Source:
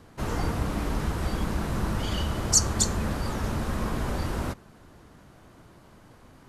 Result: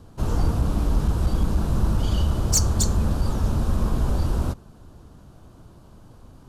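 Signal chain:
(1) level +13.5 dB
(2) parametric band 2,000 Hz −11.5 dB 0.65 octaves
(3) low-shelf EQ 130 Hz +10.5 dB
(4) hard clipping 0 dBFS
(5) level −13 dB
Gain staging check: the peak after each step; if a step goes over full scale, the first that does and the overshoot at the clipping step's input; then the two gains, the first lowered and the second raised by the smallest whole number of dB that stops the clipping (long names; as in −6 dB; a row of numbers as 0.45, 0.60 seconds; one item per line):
+6.5, +7.0, +8.5, 0.0, −13.0 dBFS
step 1, 8.5 dB
step 1 +4.5 dB, step 5 −4 dB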